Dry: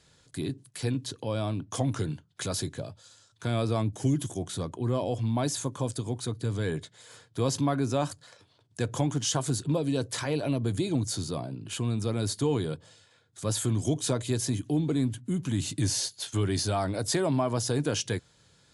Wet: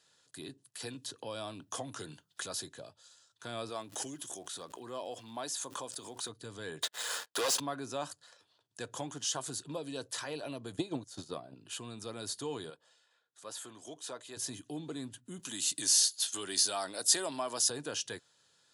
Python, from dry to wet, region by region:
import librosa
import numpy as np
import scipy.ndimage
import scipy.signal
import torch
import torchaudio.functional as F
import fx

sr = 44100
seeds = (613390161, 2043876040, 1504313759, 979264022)

y = fx.chain(x, sr, fx.high_shelf(hz=8200.0, db=4.5),
    fx.band_squash(depth_pct=70), at=(0.8, 2.41))
y = fx.highpass(y, sr, hz=340.0, slope=6, at=(3.69, 6.28), fade=0.02)
y = fx.dmg_crackle(y, sr, seeds[0], per_s=300.0, level_db=-53.0, at=(3.69, 6.28), fade=0.02)
y = fx.pre_swell(y, sr, db_per_s=49.0, at=(3.69, 6.28), fade=0.02)
y = fx.chain(y, sr, fx.highpass(hz=490.0, slope=12),
    fx.leveller(passes=5),
    fx.band_squash(depth_pct=40), at=(6.82, 7.6))
y = fx.chain(y, sr, fx.high_shelf(hz=4100.0, db=-7.0),
    fx.notch(hz=4600.0, q=30.0),
    fx.transient(attack_db=12, sustain_db=-10), at=(10.72, 11.55))
y = fx.chain(y, sr, fx.highpass(hz=660.0, slope=6),
    fx.high_shelf(hz=2700.0, db=-8.5), at=(12.7, 14.37))
y = fx.chain(y, sr, fx.highpass(hz=190.0, slope=12),
    fx.high_shelf(hz=3100.0, db=11.5), at=(15.39, 17.7))
y = fx.highpass(y, sr, hz=790.0, slope=6)
y = fx.notch(y, sr, hz=2200.0, q=6.9)
y = F.gain(torch.from_numpy(y), -4.5).numpy()